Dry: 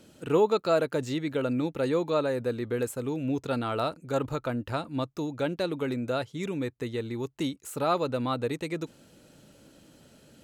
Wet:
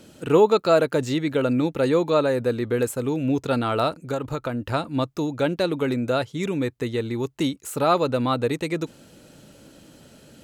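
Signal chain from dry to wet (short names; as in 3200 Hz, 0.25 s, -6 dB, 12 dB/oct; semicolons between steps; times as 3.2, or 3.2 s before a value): 4.05–4.62 compressor 6:1, threshold -30 dBFS, peak gain reduction 8 dB; gain +6.5 dB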